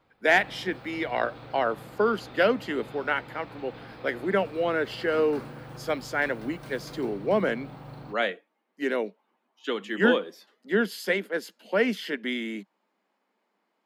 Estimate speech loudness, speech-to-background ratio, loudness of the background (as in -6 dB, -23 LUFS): -28.0 LUFS, 16.0 dB, -44.0 LUFS